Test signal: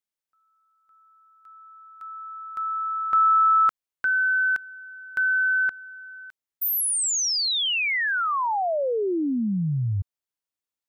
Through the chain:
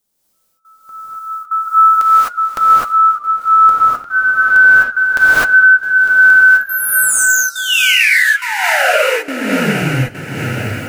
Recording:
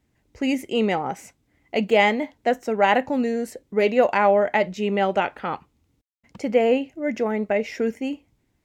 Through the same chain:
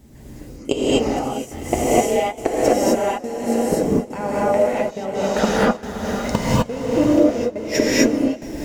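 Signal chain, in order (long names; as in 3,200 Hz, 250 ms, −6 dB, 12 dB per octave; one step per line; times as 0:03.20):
camcorder AGC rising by 13 dB per second
parametric band 2,100 Hz −11 dB 2.1 octaves
gate with flip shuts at −18 dBFS, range −27 dB
downward compressor 6 to 1, threshold −35 dBFS
feedback delay with all-pass diffusion 520 ms, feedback 65%, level −8 dB
gate pattern "xxx...xx" 139 BPM −24 dB
flanger 0.34 Hz, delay 4.9 ms, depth 3.8 ms, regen −61%
dynamic equaliser 170 Hz, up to −5 dB, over −60 dBFS, Q 0.97
reverb whose tail is shaped and stops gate 280 ms rising, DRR −7.5 dB
boost into a limiter +26 dB
feedback echo with a swinging delay time 154 ms, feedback 64%, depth 160 cents, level −24 dB
level −1 dB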